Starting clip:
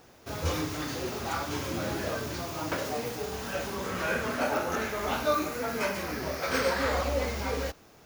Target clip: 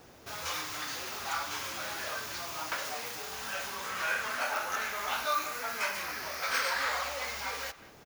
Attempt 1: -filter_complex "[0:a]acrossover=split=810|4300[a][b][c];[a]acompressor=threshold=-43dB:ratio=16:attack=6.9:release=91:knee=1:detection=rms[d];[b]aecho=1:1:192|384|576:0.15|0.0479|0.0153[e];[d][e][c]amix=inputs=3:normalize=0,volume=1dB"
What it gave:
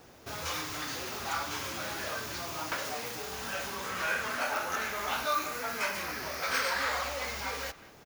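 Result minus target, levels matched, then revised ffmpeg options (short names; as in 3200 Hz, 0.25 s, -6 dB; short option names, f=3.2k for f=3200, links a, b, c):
compressor: peak gain reduction -7 dB
-filter_complex "[0:a]acrossover=split=810|4300[a][b][c];[a]acompressor=threshold=-50.5dB:ratio=16:attack=6.9:release=91:knee=1:detection=rms[d];[b]aecho=1:1:192|384|576:0.15|0.0479|0.0153[e];[d][e][c]amix=inputs=3:normalize=0,volume=1dB"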